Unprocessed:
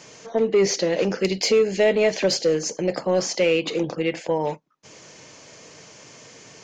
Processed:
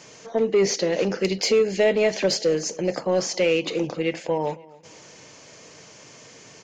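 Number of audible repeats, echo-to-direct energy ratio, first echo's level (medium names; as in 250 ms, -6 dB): 2, -21.5 dB, -22.0 dB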